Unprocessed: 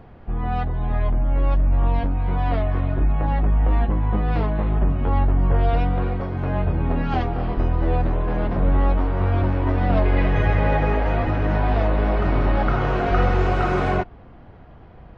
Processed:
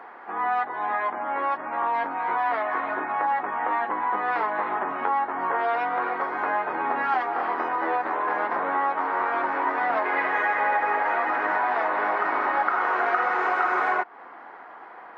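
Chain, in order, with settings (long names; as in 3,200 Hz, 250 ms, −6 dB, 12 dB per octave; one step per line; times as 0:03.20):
high-pass filter 330 Hz 24 dB per octave
flat-topped bell 1,300 Hz +13 dB
downward compressor 3 to 1, threshold −23 dBFS, peak gain reduction 11 dB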